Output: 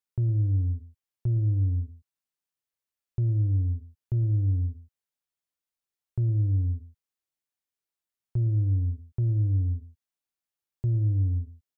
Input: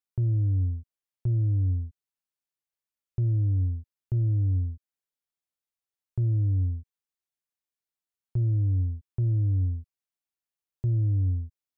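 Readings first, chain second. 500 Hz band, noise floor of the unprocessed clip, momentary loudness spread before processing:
no reading, under -85 dBFS, 11 LU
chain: echo from a far wall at 19 m, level -14 dB

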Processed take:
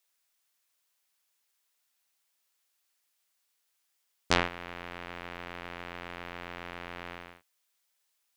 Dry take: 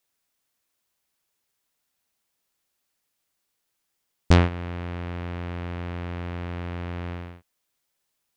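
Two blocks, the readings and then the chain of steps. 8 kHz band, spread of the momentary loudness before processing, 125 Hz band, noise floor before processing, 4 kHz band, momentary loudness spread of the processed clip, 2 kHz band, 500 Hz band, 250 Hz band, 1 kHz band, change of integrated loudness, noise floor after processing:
no reading, 14 LU, -19.5 dB, -78 dBFS, +0.5 dB, 14 LU, -0.5 dB, -7.0 dB, -12.5 dB, -2.5 dB, -8.0 dB, -77 dBFS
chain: high-pass 1.1 kHz 6 dB/octave; trim +1 dB

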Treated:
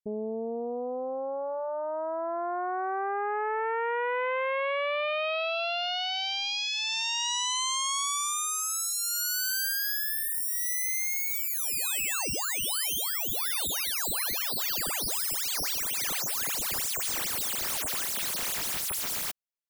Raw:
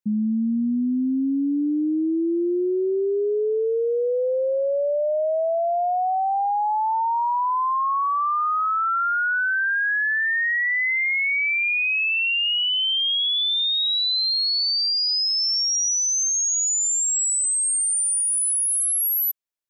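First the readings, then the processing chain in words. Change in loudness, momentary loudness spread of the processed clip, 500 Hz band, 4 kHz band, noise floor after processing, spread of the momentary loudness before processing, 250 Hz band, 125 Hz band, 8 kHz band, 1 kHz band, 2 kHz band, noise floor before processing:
-7.5 dB, 6 LU, -9.0 dB, -9.0 dB, -33 dBFS, 4 LU, -19.0 dB, no reading, -8.0 dB, -9.5 dB, -11.0 dB, -22 dBFS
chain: self-modulated delay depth 1 ms; trim -8 dB

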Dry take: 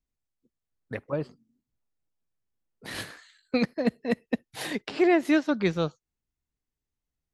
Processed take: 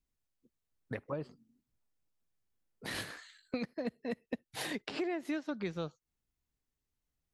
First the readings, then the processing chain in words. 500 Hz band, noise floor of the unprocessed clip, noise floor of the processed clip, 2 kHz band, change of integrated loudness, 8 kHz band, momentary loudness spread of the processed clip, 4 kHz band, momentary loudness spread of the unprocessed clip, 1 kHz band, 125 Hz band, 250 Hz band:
-12.0 dB, under -85 dBFS, under -85 dBFS, -10.0 dB, -12.0 dB, -4.5 dB, 8 LU, -6.5 dB, 17 LU, -11.5 dB, -10.0 dB, -12.5 dB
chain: compression 4:1, threshold -36 dBFS, peak gain reduction 16 dB

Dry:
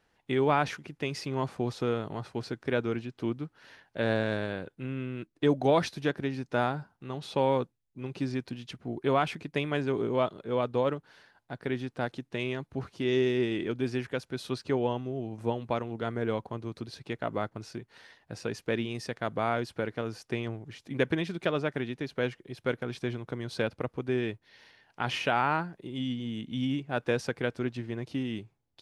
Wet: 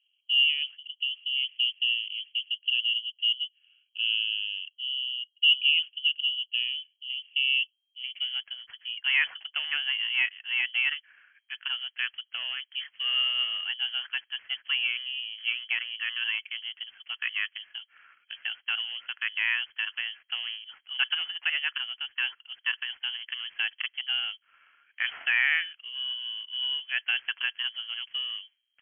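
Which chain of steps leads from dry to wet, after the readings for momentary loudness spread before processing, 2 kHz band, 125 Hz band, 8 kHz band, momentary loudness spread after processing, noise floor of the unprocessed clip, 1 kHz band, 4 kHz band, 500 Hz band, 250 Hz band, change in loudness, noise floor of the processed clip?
12 LU, +9.5 dB, under -40 dB, under -30 dB, 11 LU, -74 dBFS, -15.5 dB, +17.5 dB, under -35 dB, under -40 dB, +4.0 dB, -75 dBFS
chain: median filter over 15 samples; low-pass sweep 360 Hz -> 1.5 kHz, 7.47–8.46 s; frequency inversion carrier 3.2 kHz; trim -1 dB

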